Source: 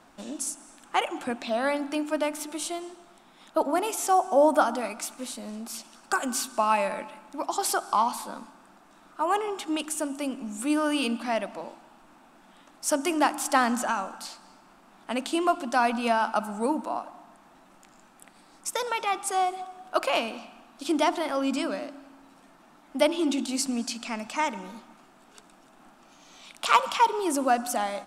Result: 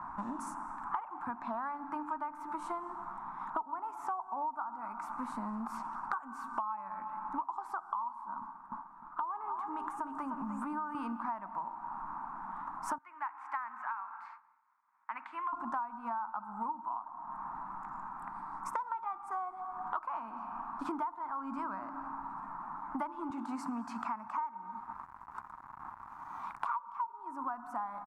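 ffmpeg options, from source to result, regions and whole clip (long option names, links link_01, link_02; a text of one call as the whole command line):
ffmpeg -i in.wav -filter_complex "[0:a]asettb=1/sr,asplit=3[link_01][link_02][link_03];[link_01]atrim=end=8.414[link_04];[link_02]atrim=start=8.41:end=10.95,asetpts=PTS-STARTPTS,afade=type=in:duration=0.004:curve=qsin,afade=type=out:start_time=2.536:duration=0.004:curve=qsin,agate=range=-33dB:threshold=-47dB:ratio=3:release=100:detection=peak,acompressor=threshold=-35dB:ratio=2:attack=3.2:release=140:knee=1:detection=peak,asplit=2[link_05][link_06];[link_06]adelay=304,lowpass=frequency=3400:poles=1,volume=-8dB,asplit=2[link_07][link_08];[link_08]adelay=304,lowpass=frequency=3400:poles=1,volume=0.25,asplit=2[link_09][link_10];[link_10]adelay=304,lowpass=frequency=3400:poles=1,volume=0.25[link_11];[link_05][link_07][link_09][link_11]amix=inputs=4:normalize=0,atrim=end_sample=112014[link_12];[link_03]atrim=start=10.946[link_13];[link_04][link_12]acrossfade=duration=0.004:curve1=hsin:curve2=qsin[link_14];[link_14][link_13]acrossfade=duration=0.004:curve1=qsin:curve2=hsin,asettb=1/sr,asplit=3[link_15][link_16][link_17];[link_15]atrim=end=12.984[link_18];[link_16]atrim=start=12.98:end=15.53,asetpts=PTS-STARTPTS,afade=type=in:duration=0.004:curve=qsin,afade=type=out:start_time=2.546:duration=0.004:curve=qsin,agate=range=-33dB:threshold=-45dB:ratio=3:release=100:detection=peak,bandpass=frequency=2200:width_type=q:width=3.9[link_19];[link_17]atrim=start=15.526[link_20];[link_18][link_19]acrossfade=duration=0.004:curve1=hsin:curve2=qsin[link_21];[link_21][link_20]acrossfade=duration=0.004:curve1=qsin:curve2=hsin,asettb=1/sr,asplit=3[link_22][link_23][link_24];[link_22]atrim=end=23.304[link_25];[link_23]atrim=start=23.3:end=26.66,asetpts=PTS-STARTPTS,afade=type=in:duration=0.004:curve=qsin,afade=type=out:start_time=3.356:duration=0.004:curve=qsin,highpass=frequency=220:poles=1,aeval=exprs='val(0)*gte(abs(val(0)),0.00266)':channel_layout=same[link_26];[link_24]atrim=start=26.656[link_27];[link_25][link_26]acrossfade=duration=0.004:curve1=hsin:curve2=qsin[link_28];[link_28][link_27]acrossfade=duration=0.004:curve1=qsin:curve2=hsin,firequalizer=gain_entry='entry(110,0);entry(520,-21);entry(950,13);entry(1700,-6);entry(3000,-29)':delay=0.05:min_phase=1,acompressor=threshold=-44dB:ratio=16,volume=9.5dB" out.wav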